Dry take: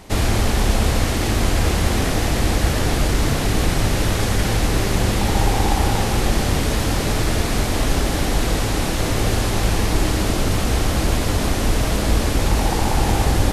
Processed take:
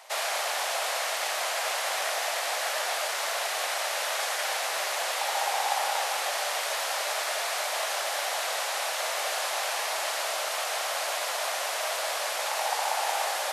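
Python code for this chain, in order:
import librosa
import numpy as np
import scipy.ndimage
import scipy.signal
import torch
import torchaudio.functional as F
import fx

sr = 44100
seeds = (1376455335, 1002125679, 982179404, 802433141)

y = scipy.signal.sosfilt(scipy.signal.ellip(4, 1.0, 80, 600.0, 'highpass', fs=sr, output='sos'), x)
y = y * librosa.db_to_amplitude(-3.0)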